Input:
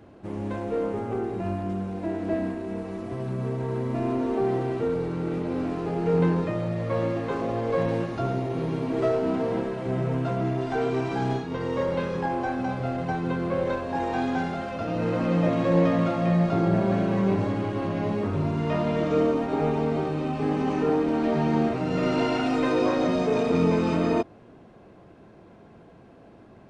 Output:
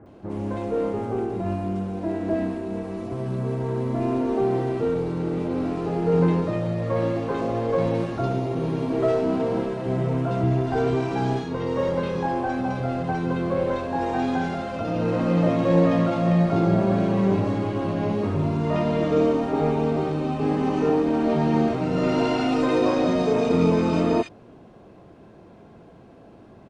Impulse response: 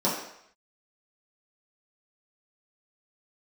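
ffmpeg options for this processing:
-filter_complex "[0:a]asettb=1/sr,asplit=3[link_01][link_02][link_03];[link_01]atrim=end=10.434[link_04];[link_02]atrim=start=10.43:end=10.96,asetpts=PTS-STARTPTS,afade=type=in:duration=0.004:curve=qsin,afade=type=out:start_time=0.526:duration=0.004:curve=qsin,equalizer=frequency=73:width_type=o:width=1.4:gain=12[link_05];[link_03]atrim=start=10.956[link_06];[link_04][link_05]acrossfade=duration=0.004:curve1=hsin:curve2=qsin[link_07];[link_07][link_06]acrossfade=duration=0.004:curve1=qsin:curve2=hsin,acrossover=split=1800[link_08][link_09];[link_09]adelay=60[link_10];[link_08][link_10]amix=inputs=2:normalize=0,volume=2.5dB"

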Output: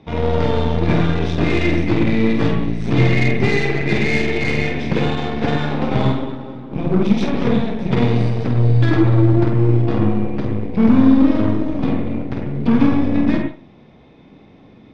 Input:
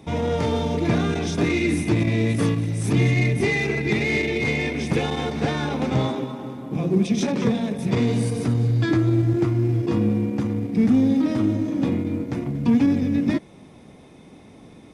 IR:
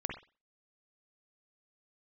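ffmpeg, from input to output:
-filter_complex "[0:a]lowpass=frequency=4400:width=0.5412,lowpass=frequency=4400:width=1.3066,aeval=exprs='0.422*(cos(1*acos(clip(val(0)/0.422,-1,1)))-cos(1*PI/2))+0.0237*(cos(7*acos(clip(val(0)/0.422,-1,1)))-cos(7*PI/2))+0.0299*(cos(8*acos(clip(val(0)/0.422,-1,1)))-cos(8*PI/2))':channel_layout=same,asplit=2[link_01][link_02];[1:a]atrim=start_sample=2205,adelay=49[link_03];[link_02][link_03]afir=irnorm=-1:irlink=0,volume=-4dB[link_04];[link_01][link_04]amix=inputs=2:normalize=0,volume=2.5dB"

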